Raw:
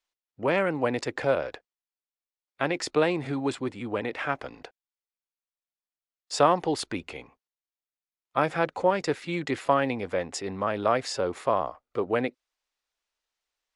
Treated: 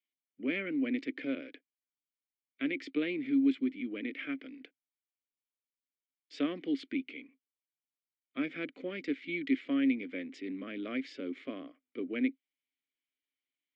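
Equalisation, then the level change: vowel filter i; HPF 210 Hz 12 dB/oct; Bessel low-pass 4200 Hz; +6.5 dB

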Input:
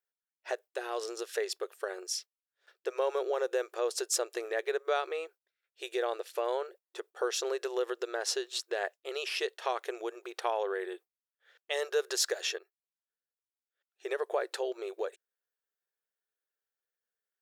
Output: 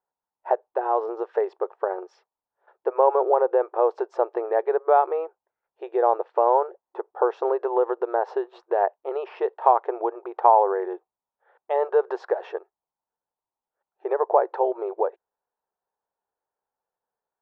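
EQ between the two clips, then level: synth low-pass 890 Hz, resonance Q 4.9; air absorption 92 m; +7.5 dB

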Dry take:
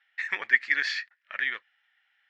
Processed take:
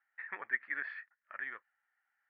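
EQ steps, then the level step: ladder low-pass 1700 Hz, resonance 30%; -1.5 dB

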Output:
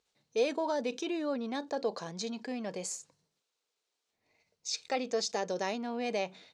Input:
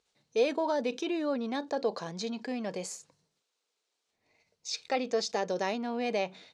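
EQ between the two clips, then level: dynamic EQ 7500 Hz, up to +6 dB, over -54 dBFS, Q 1.2; -2.5 dB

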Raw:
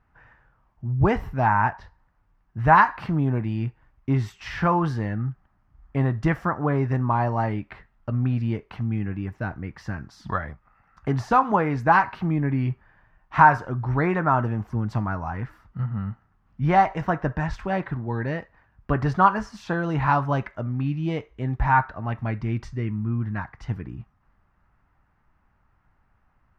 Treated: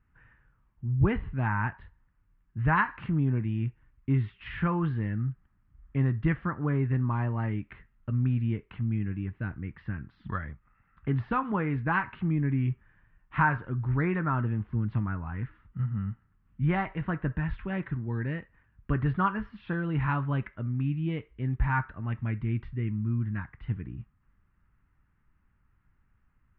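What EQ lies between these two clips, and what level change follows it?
steep low-pass 3400 Hz 36 dB/oct; air absorption 130 m; bell 720 Hz -14.5 dB 1.2 oct; -2.0 dB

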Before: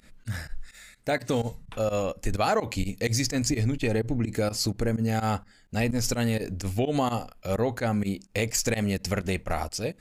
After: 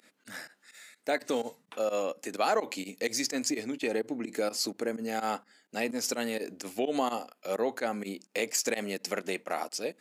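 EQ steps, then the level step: HPF 260 Hz 24 dB/oct; -2.5 dB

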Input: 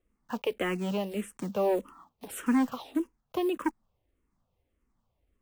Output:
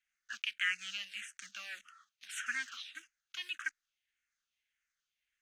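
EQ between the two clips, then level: elliptic high-pass 1500 Hz, stop band 40 dB; air absorption 89 m; bell 6400 Hz +9.5 dB 0.22 oct; +6.0 dB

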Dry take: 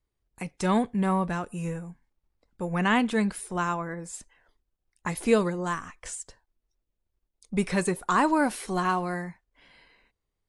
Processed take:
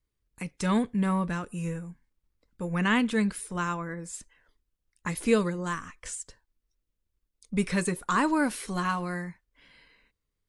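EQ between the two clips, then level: bell 750 Hz -9 dB 0.66 oct; notch 370 Hz, Q 12; 0.0 dB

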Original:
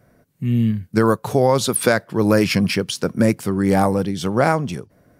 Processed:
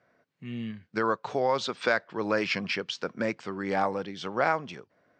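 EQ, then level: HPF 1200 Hz 6 dB/oct; brick-wall FIR low-pass 8700 Hz; air absorption 200 m; -1.5 dB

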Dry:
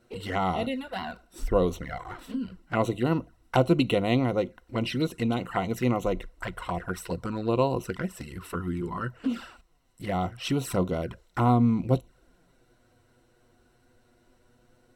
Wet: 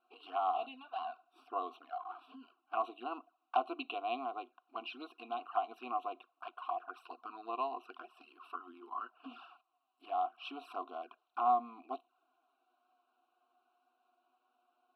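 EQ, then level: vowel filter a; brick-wall FIR high-pass 240 Hz; fixed phaser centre 2000 Hz, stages 6; +5.0 dB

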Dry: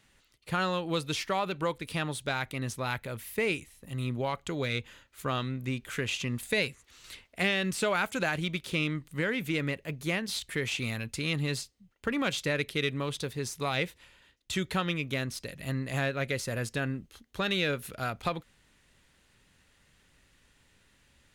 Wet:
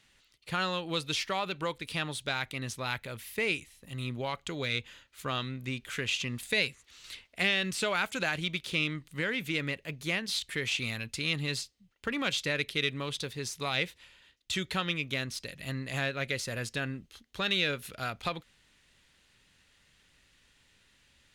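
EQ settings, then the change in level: bell 3700 Hz +7 dB 2.2 oct; -4.0 dB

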